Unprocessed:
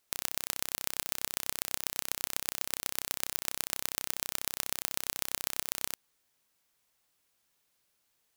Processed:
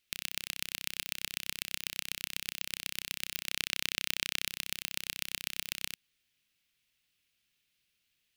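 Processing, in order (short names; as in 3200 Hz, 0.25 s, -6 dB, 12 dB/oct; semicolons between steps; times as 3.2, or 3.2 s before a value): EQ curve 170 Hz 0 dB, 910 Hz -15 dB, 2700 Hz +6 dB, 7200 Hz -6 dB; 3.49–4.45 sample leveller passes 2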